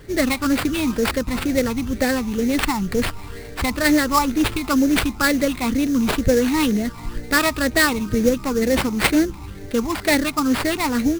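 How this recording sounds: phasing stages 12, 2.1 Hz, lowest notch 510–1100 Hz; aliases and images of a low sample rate 6.3 kHz, jitter 20%

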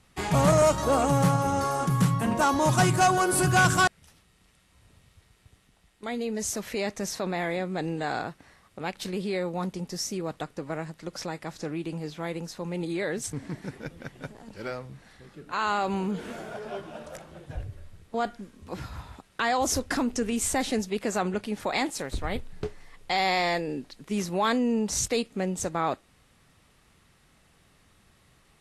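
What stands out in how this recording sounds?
noise floor -62 dBFS; spectral tilt -4.5 dB/octave

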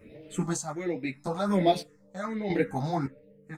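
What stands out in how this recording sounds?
phasing stages 4, 1.3 Hz, lowest notch 360–1300 Hz; chopped level 0.8 Hz, depth 65%, duty 45%; a shimmering, thickened sound

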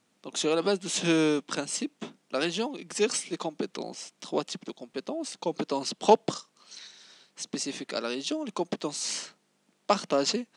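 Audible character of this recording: noise floor -71 dBFS; spectral tilt -3.0 dB/octave

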